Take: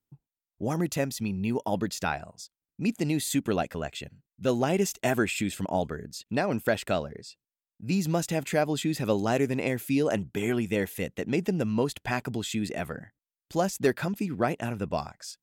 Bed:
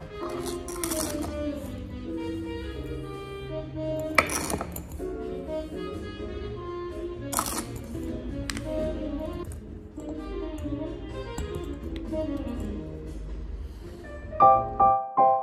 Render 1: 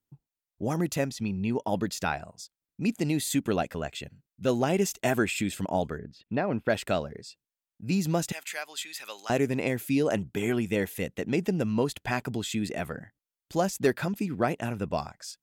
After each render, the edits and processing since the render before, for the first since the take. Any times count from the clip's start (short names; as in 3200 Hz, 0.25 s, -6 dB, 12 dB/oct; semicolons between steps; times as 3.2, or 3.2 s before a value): 1.1–1.69 air absorption 51 m; 5.98–6.7 air absorption 330 m; 8.32–9.3 HPF 1500 Hz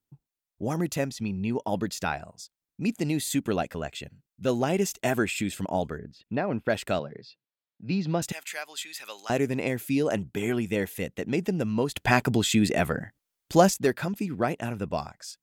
6.99–8.22 elliptic band-pass 120–4400 Hz; 11.95–13.74 gain +8 dB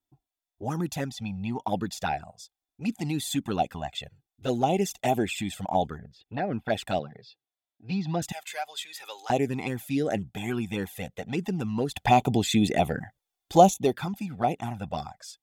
small resonant body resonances 770/3500 Hz, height 12 dB, ringing for 25 ms; envelope flanger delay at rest 3.1 ms, full sweep at -17.5 dBFS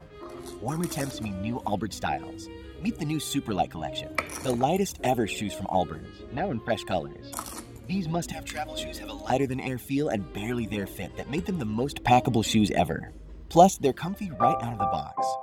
add bed -8 dB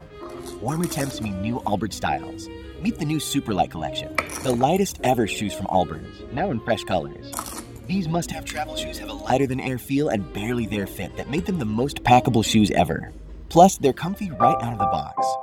gain +5 dB; limiter -2 dBFS, peak gain reduction 2.5 dB